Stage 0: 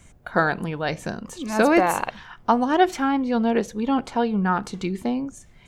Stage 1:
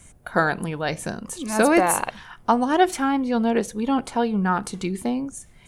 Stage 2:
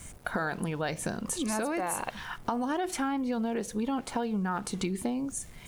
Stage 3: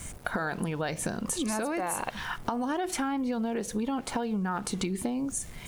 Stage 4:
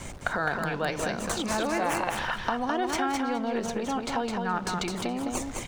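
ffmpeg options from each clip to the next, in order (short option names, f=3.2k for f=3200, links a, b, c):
-af "equalizer=f=9.8k:t=o:w=0.57:g=14"
-af "alimiter=limit=-14.5dB:level=0:latency=1:release=10,acompressor=threshold=-32dB:ratio=6,aeval=exprs='val(0)*gte(abs(val(0)),0.00188)':c=same,volume=3.5dB"
-af "acompressor=threshold=-34dB:ratio=2.5,volume=5dB"
-filter_complex "[0:a]acrossover=split=410|1700|7500[a][b][c][d];[a]asoftclip=type=tanh:threshold=-37.5dB[e];[d]acrusher=samples=20:mix=1:aa=0.000001:lfo=1:lforange=20:lforate=3[f];[e][b][c][f]amix=inputs=4:normalize=0,aecho=1:1:210|420|630:0.631|0.0946|0.0142,volume=3.5dB"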